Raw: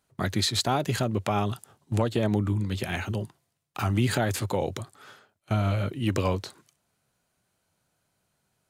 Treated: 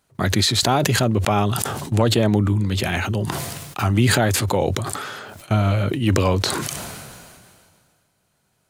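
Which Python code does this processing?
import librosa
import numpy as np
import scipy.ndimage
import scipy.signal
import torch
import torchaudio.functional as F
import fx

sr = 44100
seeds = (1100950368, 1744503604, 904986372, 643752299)

y = fx.sustainer(x, sr, db_per_s=28.0)
y = F.gain(torch.from_numpy(y), 6.5).numpy()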